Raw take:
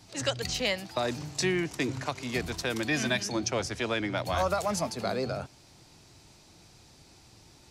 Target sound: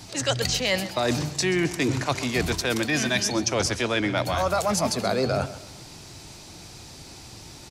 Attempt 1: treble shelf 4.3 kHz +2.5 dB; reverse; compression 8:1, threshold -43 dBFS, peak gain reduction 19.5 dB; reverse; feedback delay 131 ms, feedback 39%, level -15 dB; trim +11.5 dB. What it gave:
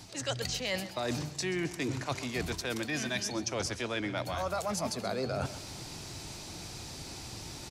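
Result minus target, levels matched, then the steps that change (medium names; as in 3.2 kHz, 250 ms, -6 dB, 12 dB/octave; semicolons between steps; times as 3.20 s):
compression: peak gain reduction +9.5 dB
change: compression 8:1, threshold -32 dBFS, peak gain reduction 10 dB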